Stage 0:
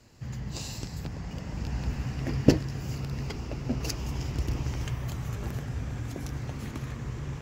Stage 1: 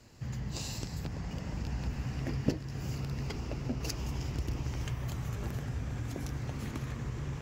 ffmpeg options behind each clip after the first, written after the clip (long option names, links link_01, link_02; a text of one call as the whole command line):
ffmpeg -i in.wav -af "acompressor=threshold=-34dB:ratio=2" out.wav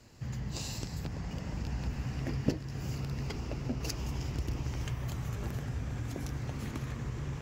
ffmpeg -i in.wav -af anull out.wav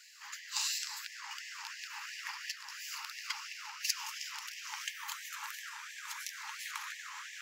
ffmpeg -i in.wav -filter_complex "[0:a]asplit=2[link_01][link_02];[link_02]asoftclip=type=hard:threshold=-32.5dB,volume=-6dB[link_03];[link_01][link_03]amix=inputs=2:normalize=0,afftfilt=real='re*gte(b*sr/1024,790*pow(1700/790,0.5+0.5*sin(2*PI*2.9*pts/sr)))':imag='im*gte(b*sr/1024,790*pow(1700/790,0.5+0.5*sin(2*PI*2.9*pts/sr)))':win_size=1024:overlap=0.75,volume=4.5dB" out.wav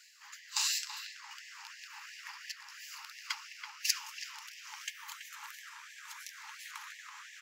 ffmpeg -i in.wav -filter_complex "[0:a]agate=range=-8dB:threshold=-37dB:ratio=16:detection=peak,areverse,acompressor=mode=upward:threshold=-55dB:ratio=2.5,areverse,asplit=2[link_01][link_02];[link_02]adelay=330,highpass=300,lowpass=3400,asoftclip=type=hard:threshold=-23.5dB,volume=-8dB[link_03];[link_01][link_03]amix=inputs=2:normalize=0,volume=3dB" out.wav